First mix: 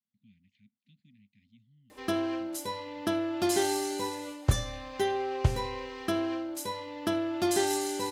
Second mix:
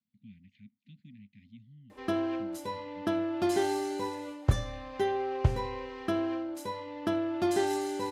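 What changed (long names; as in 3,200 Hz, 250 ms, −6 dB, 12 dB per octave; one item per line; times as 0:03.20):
speech +9.5 dB
master: add high-shelf EQ 3,600 Hz −12 dB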